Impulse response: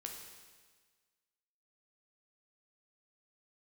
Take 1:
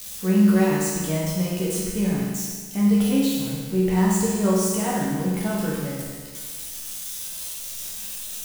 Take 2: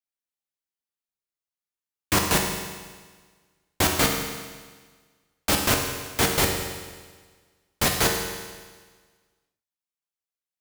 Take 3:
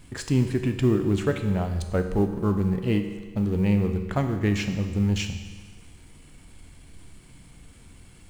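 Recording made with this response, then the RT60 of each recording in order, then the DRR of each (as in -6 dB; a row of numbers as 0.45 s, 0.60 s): 2; 1.5 s, 1.5 s, 1.5 s; -6.0 dB, 1.0 dB, 6.0 dB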